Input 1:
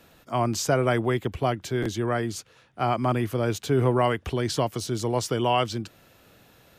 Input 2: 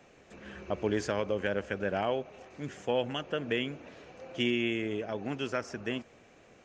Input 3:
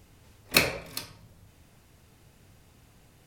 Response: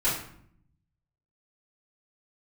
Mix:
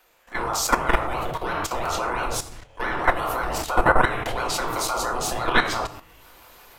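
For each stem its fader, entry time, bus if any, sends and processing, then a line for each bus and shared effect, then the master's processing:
-3.0 dB, 0.00 s, send -7 dB, AGC gain up to 10 dB; ring modulator with a swept carrier 630 Hz, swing 65%, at 5.9 Hz
-8.0 dB, 0.00 s, no send, spectral dilation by 0.48 s; steep high-pass 450 Hz 72 dB/oct; compressor, threshold -37 dBFS, peak gain reduction 14.5 dB
off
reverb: on, RT60 0.65 s, pre-delay 3 ms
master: high shelf 10000 Hz +8.5 dB; level quantiser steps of 12 dB; bell 170 Hz -10.5 dB 1.9 oct

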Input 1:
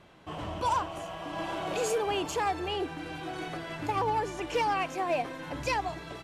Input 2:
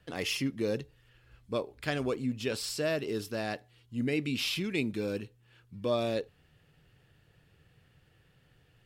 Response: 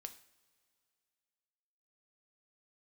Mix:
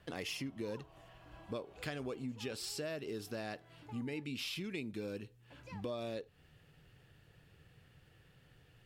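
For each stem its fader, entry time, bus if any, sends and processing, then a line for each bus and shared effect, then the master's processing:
-16.5 dB, 0.00 s, muted 4.24–5.5, send -10 dB, tone controls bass +2 dB, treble -4 dB; auto duck -10 dB, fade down 1.30 s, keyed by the second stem
+0.5 dB, 0.00 s, no send, dry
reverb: on, pre-delay 3 ms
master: compressor 4:1, threshold -40 dBFS, peak gain reduction 13.5 dB

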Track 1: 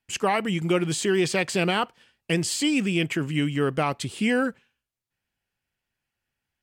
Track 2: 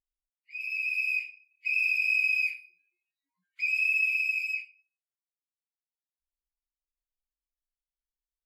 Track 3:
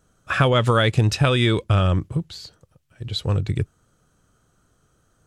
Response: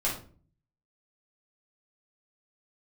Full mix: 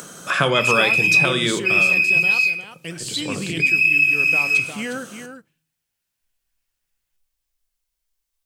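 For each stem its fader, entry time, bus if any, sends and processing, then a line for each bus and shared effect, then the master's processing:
-9.5 dB, 0.55 s, send -21 dB, echo send -9 dB, vibrato 0.65 Hz 12 cents
+1.5 dB, 0.00 s, send -5.5 dB, no echo send, dry
-7.0 dB, 0.00 s, send -13 dB, no echo send, steep high-pass 150 Hz 36 dB/oct; upward compressor, threshold -23 dBFS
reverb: on, RT60 0.45 s, pre-delay 6 ms
echo: echo 0.355 s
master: high shelf 2500 Hz +7.5 dB; vocal rider within 5 dB 0.5 s

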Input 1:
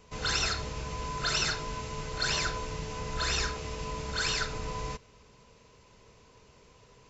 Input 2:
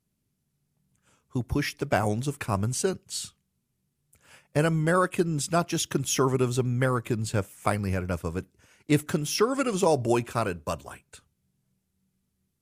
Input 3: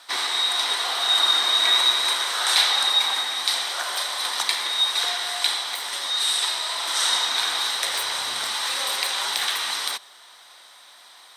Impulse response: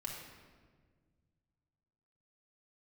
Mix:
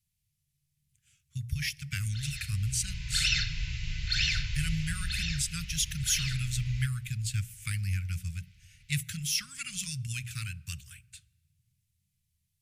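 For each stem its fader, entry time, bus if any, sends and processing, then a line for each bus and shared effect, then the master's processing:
2.55 s -12.5 dB -> 3.24 s -2.5 dB -> 4.78 s -2.5 dB -> 5.27 s -9 dB, 1.90 s, send -8 dB, LPF 3700 Hz 12 dB/oct; AGC gain up to 7.5 dB
0.0 dB, 0.00 s, send -20.5 dB, notches 60/120/180 Hz
off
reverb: on, RT60 1.6 s, pre-delay 3 ms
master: inverse Chebyshev band-stop 320–880 Hz, stop band 60 dB

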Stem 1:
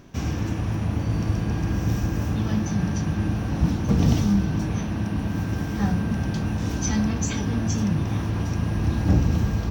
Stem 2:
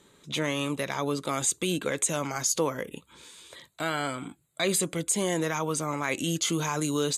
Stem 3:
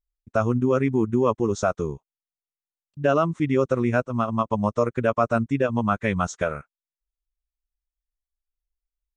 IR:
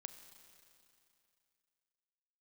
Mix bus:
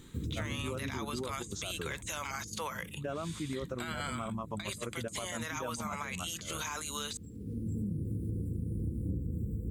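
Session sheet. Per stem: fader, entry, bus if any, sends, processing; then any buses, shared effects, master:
-5.0 dB, 0.00 s, no bus, no send, FFT band-reject 530–7400 Hz; auto duck -19 dB, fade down 1.50 s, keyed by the second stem
0.0 dB, 0.00 s, bus A, no send, HPF 1100 Hz 12 dB/oct
-17.5 dB, 0.00 s, bus A, no send, fast leveller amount 50%
bus A: 0.0 dB, negative-ratio compressor -34 dBFS, ratio -0.5; limiter -25.5 dBFS, peak gain reduction 9.5 dB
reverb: off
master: compressor 6:1, threshold -32 dBFS, peak gain reduction 13 dB

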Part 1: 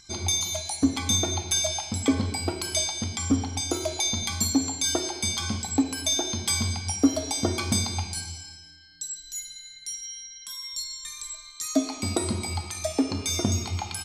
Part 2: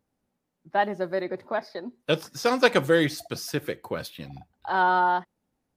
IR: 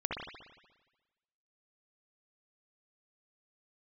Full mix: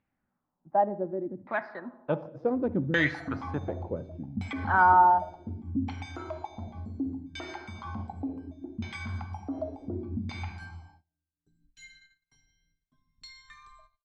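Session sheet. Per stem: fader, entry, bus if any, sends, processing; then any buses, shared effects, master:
-15.5 dB, 2.45 s, no send, gate -42 dBFS, range -25 dB; limiter -20.5 dBFS, peak gain reduction 11.5 dB; AGC gain up to 11 dB
-3.5 dB, 0.00 s, send -17 dB, dry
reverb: on, RT60 1.2 s, pre-delay 59 ms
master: bell 450 Hz -8.5 dB 0.75 oct; LFO low-pass saw down 0.68 Hz 220–2500 Hz

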